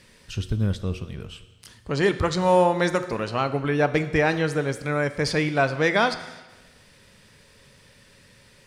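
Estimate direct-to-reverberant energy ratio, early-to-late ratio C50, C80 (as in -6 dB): 10.5 dB, 13.0 dB, 14.5 dB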